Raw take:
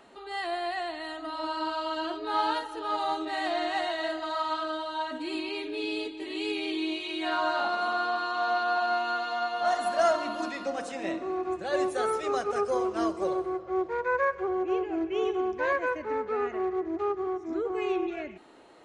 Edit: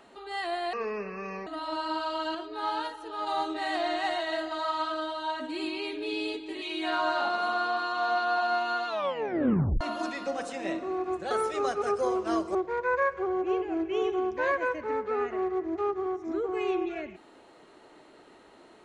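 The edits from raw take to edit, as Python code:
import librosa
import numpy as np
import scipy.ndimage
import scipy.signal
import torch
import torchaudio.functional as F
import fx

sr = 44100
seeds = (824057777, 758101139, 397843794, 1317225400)

y = fx.edit(x, sr, fx.speed_span(start_s=0.73, length_s=0.45, speed=0.61),
    fx.clip_gain(start_s=2.06, length_s=0.92, db=-4.0),
    fx.cut(start_s=6.33, length_s=0.68),
    fx.tape_stop(start_s=9.26, length_s=0.94),
    fx.cut(start_s=11.7, length_s=0.3),
    fx.cut(start_s=13.24, length_s=0.52), tone=tone)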